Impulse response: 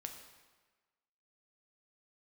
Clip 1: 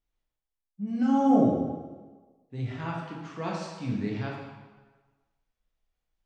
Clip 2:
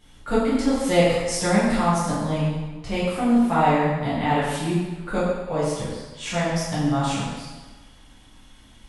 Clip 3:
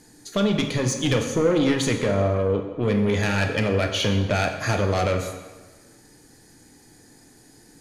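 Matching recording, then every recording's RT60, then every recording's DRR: 3; 1.3, 1.3, 1.3 seconds; −3.5, −11.0, 3.5 decibels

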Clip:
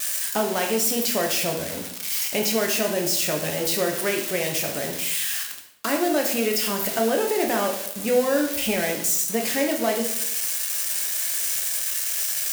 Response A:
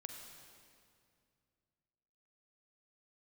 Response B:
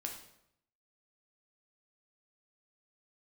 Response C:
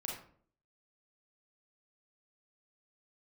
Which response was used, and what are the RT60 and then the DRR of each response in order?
B; 2.3, 0.75, 0.55 seconds; 3.0, 1.5, −2.0 decibels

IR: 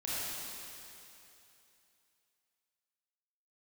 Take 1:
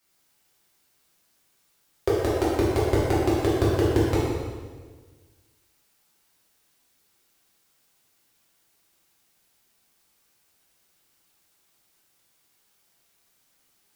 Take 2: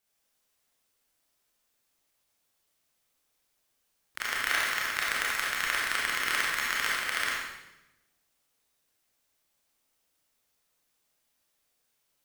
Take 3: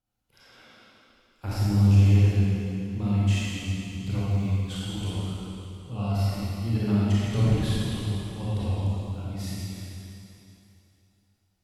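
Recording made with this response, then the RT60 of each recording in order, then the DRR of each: 3; 1.5, 0.95, 2.9 seconds; −8.0, −5.0, −9.5 decibels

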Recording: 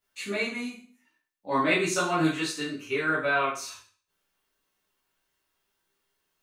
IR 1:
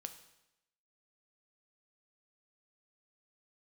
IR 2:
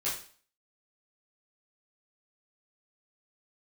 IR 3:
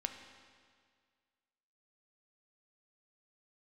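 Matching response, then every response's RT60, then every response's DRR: 2; 0.90, 0.45, 1.9 seconds; 7.5, −9.5, 5.0 decibels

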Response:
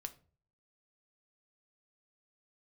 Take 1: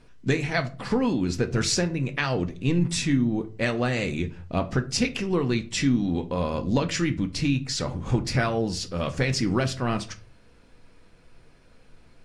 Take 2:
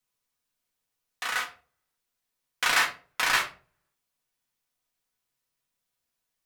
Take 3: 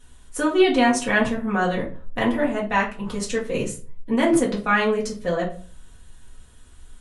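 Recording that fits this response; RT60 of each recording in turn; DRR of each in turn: 1; 0.40, 0.40, 0.40 seconds; 7.0, −1.0, −5.5 decibels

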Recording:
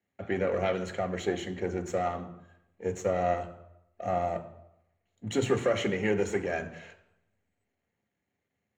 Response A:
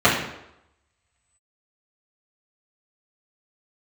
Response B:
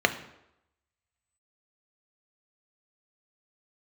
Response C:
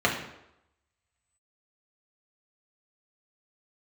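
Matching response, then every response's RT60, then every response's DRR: B; 0.85, 0.85, 0.85 seconds; −10.5, 7.0, −3.0 decibels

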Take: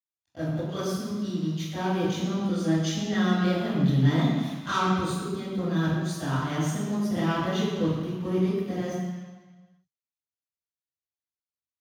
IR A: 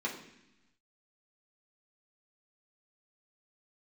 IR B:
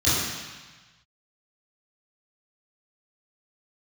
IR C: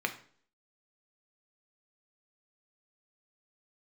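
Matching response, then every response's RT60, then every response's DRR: B; 0.90, 1.3, 0.50 seconds; −4.0, −13.5, 5.0 decibels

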